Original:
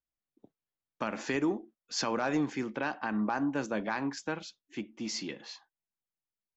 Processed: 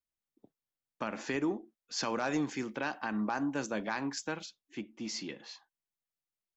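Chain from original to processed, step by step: 2.03–4.46 s: treble shelf 4.9 kHz +11 dB; trim -2.5 dB

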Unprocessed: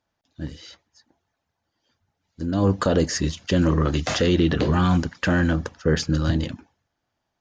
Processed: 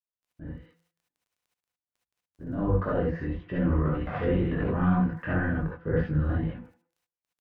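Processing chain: octave divider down 1 oct, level -6 dB; low-pass 2 kHz 24 dB/octave; gate -45 dBFS, range -26 dB; de-hum 167.5 Hz, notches 29; chorus 2 Hz, delay 16.5 ms, depth 6.7 ms; crackle 12 per s -49 dBFS; speakerphone echo 170 ms, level -23 dB; gated-style reverb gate 90 ms rising, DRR -4 dB; trim -8 dB

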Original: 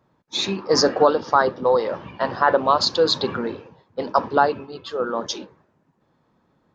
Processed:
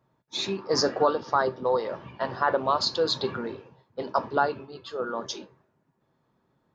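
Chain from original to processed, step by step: feedback comb 130 Hz, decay 0.2 s, harmonics odd, mix 60%

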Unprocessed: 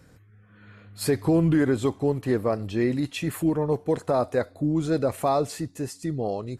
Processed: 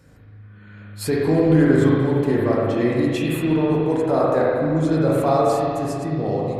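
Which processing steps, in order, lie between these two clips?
spring tank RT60 2.4 s, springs 38/58 ms, chirp 60 ms, DRR -5 dB

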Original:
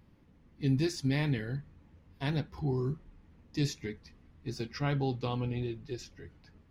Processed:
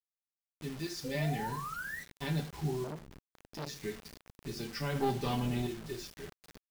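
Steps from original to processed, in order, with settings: fade-in on the opening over 1.50 s; 0.69–1.15 s: dynamic bell 150 Hz, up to -7 dB, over -46 dBFS, Q 1.1; compression 1.5:1, threshold -43 dBFS, peak gain reduction 6.5 dB; feedback delay 81 ms, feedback 33%, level -17 dB; 4.95–5.67 s: waveshaping leveller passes 2; comb 5.1 ms, depth 73%; 1.04–2.01 s: painted sound rise 490–2000 Hz -42 dBFS; FDN reverb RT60 0.38 s, low-frequency decay 0.9×, high-frequency decay 0.8×, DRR 4 dB; bit crusher 8-bit; 2.84–3.81 s: transformer saturation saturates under 1 kHz

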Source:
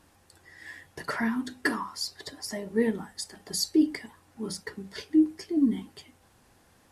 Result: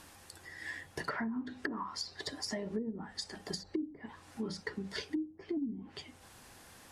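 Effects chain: low-pass that closes with the level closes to 350 Hz, closed at -22 dBFS; compression 8:1, threshold -36 dBFS, peak gain reduction 17.5 dB; tape noise reduction on one side only encoder only; trim +2 dB

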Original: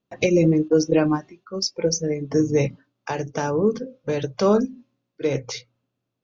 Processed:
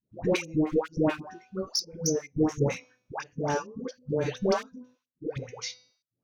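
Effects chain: de-hum 250.5 Hz, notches 33; trance gate "xxx..xx..x.xx" 140 bpm -24 dB; one-sided clip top -18.5 dBFS, bottom -10.5 dBFS; phase dispersion highs, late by 130 ms, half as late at 650 Hz; trim -3 dB

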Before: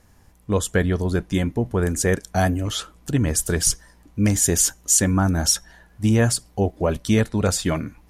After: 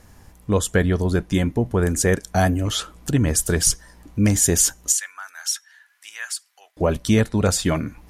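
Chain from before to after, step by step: in parallel at 0 dB: compression, threshold -33 dBFS, peak gain reduction 18.5 dB; 4.92–6.77 s: on the sum: ladder high-pass 1.3 kHz, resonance 30%

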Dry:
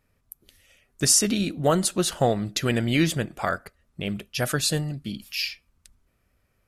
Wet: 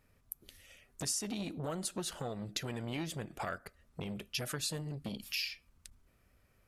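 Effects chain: compression 6:1, threshold -34 dBFS, peak gain reduction 17.5 dB; transformer saturation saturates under 1.2 kHz

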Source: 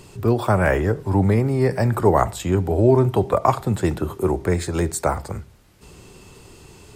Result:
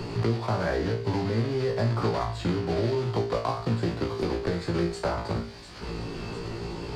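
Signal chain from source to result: block-companded coder 3-bit; tape spacing loss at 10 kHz 22 dB; feedback echo behind a high-pass 697 ms, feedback 73%, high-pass 3.2 kHz, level -20 dB; compression, threshold -25 dBFS, peak gain reduction 14 dB; peaking EQ 4.6 kHz +12.5 dB 0.27 oct; flutter echo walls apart 3 m, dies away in 0.33 s; three bands compressed up and down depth 70%; trim -1.5 dB

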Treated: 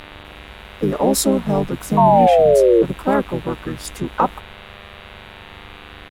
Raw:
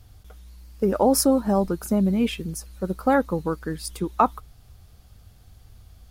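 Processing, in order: painted sound fall, 1.97–2.83 s, 440–950 Hz -14 dBFS; mains buzz 100 Hz, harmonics 39, -42 dBFS -1 dB/octave; harmony voices -5 st -2 dB, +3 st -12 dB

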